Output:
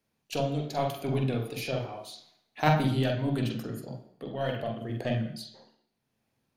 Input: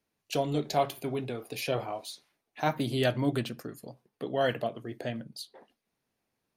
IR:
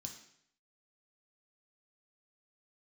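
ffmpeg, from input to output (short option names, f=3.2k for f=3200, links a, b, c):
-filter_complex "[0:a]tremolo=f=0.79:d=0.62,aeval=exprs='0.2*(cos(1*acos(clip(val(0)/0.2,-1,1)))-cos(1*PI/2))+0.0282*(cos(3*acos(clip(val(0)/0.2,-1,1)))-cos(3*PI/2))+0.00316*(cos(8*acos(clip(val(0)/0.2,-1,1)))-cos(8*PI/2))':c=same,asplit=2[a][b];[1:a]atrim=start_sample=2205,lowpass=3.7k,adelay=45[c];[b][c]afir=irnorm=-1:irlink=0,volume=4dB[d];[a][d]amix=inputs=2:normalize=0,volume=6dB"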